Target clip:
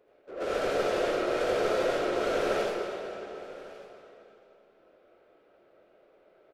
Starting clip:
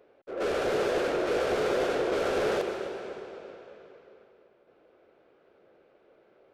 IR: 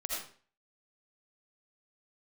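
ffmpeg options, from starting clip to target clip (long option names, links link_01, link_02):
-filter_complex "[0:a]aecho=1:1:1149:0.1[link_01];[1:a]atrim=start_sample=2205[link_02];[link_01][link_02]afir=irnorm=-1:irlink=0,volume=-3dB"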